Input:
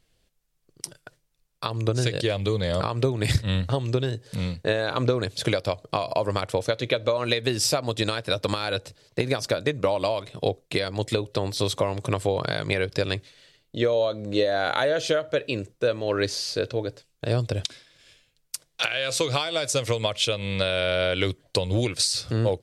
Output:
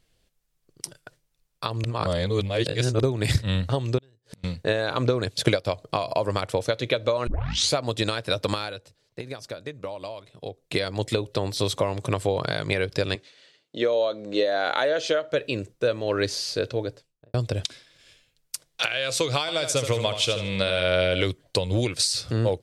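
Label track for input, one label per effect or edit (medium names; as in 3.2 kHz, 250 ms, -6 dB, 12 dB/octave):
1.840000	3.030000	reverse
3.980000	4.440000	inverted gate shuts at -29 dBFS, range -31 dB
5.260000	5.660000	transient shaper attack +5 dB, sustain -6 dB
7.270000	7.270000	tape start 0.48 s
8.580000	10.730000	dip -11 dB, fades 0.16 s
13.150000	15.320000	band-pass 240–7300 Hz
16.830000	17.340000	studio fade out
19.400000	21.230000	feedback delay 77 ms, feedback 36%, level -9 dB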